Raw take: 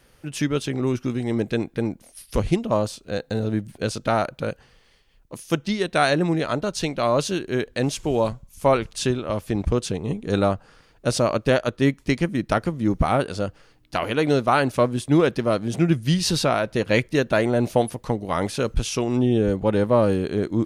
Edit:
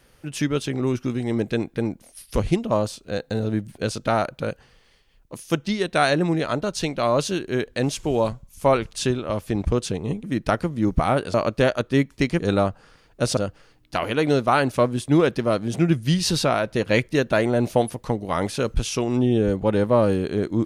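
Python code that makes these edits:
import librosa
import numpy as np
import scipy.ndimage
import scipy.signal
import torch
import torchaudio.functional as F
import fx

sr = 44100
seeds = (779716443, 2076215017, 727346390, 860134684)

y = fx.edit(x, sr, fx.swap(start_s=10.24, length_s=0.98, other_s=12.27, other_length_s=1.1), tone=tone)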